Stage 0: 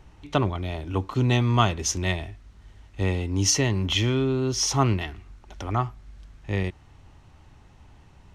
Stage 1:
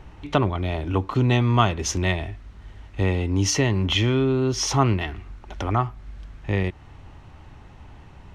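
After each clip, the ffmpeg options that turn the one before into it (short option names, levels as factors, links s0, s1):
-filter_complex "[0:a]bass=f=250:g=-1,treble=f=4000:g=-8,asplit=2[s0][s1];[s1]acompressor=threshold=0.0282:ratio=6,volume=1.41[s2];[s0][s2]amix=inputs=2:normalize=0"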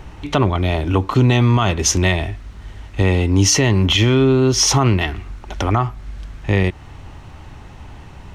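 -af "highshelf=f=5600:g=7,alimiter=level_in=3.76:limit=0.891:release=50:level=0:latency=1,volume=0.631"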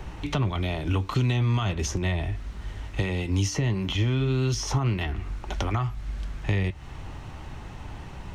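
-filter_complex "[0:a]acrossover=split=160|1700[s0][s1][s2];[s0]acompressor=threshold=0.0708:ratio=4[s3];[s1]acompressor=threshold=0.0282:ratio=4[s4];[s2]acompressor=threshold=0.02:ratio=4[s5];[s3][s4][s5]amix=inputs=3:normalize=0,flanger=delay=5.1:depth=1.8:regen=-72:speed=1.6:shape=sinusoidal,volume=1.41"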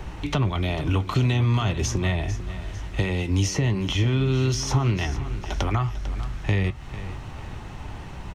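-af "aecho=1:1:448|896|1344|1792:0.211|0.0888|0.0373|0.0157,volume=1.33"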